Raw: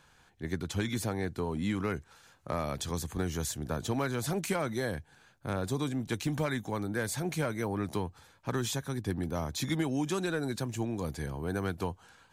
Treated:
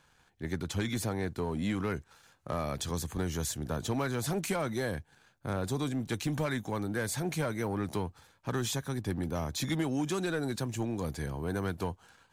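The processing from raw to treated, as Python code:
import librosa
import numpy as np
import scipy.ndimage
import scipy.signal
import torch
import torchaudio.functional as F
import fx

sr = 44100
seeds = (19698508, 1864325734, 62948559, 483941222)

y = fx.leveller(x, sr, passes=1)
y = y * 10.0 ** (-3.0 / 20.0)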